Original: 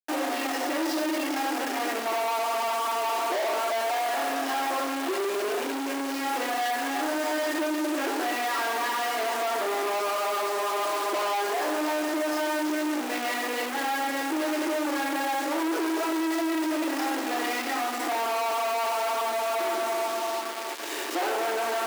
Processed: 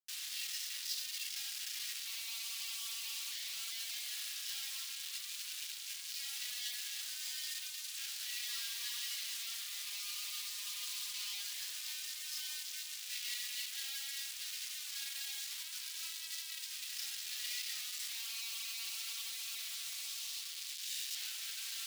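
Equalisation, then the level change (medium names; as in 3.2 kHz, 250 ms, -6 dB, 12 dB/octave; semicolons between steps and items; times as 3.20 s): ladder high-pass 2.9 kHz, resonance 25%; +2.0 dB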